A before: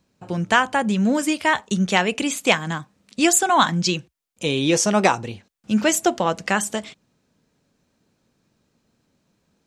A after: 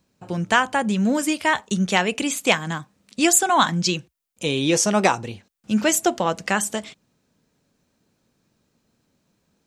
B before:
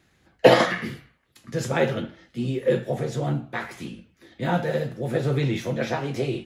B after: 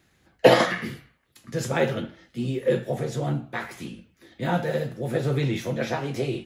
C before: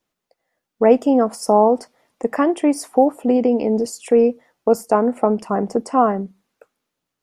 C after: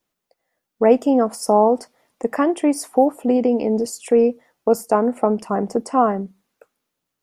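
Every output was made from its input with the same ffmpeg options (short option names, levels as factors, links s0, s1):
-af "highshelf=f=9900:g=6,volume=0.891"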